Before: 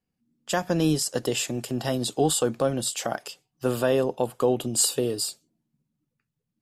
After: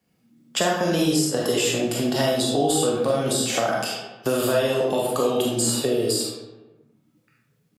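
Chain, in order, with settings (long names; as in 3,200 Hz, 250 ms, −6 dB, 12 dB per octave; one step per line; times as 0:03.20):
noise gate −48 dBFS, range −11 dB
tempo change 0.85×
downward compressor 2 to 1, threshold −26 dBFS, peak gain reduction 5.5 dB
high-pass filter 82 Hz
hollow resonant body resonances 2,200/3,400 Hz, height 6 dB
convolution reverb RT60 0.80 s, pre-delay 4 ms, DRR −4.5 dB
multiband upward and downward compressor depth 70%
level +1.5 dB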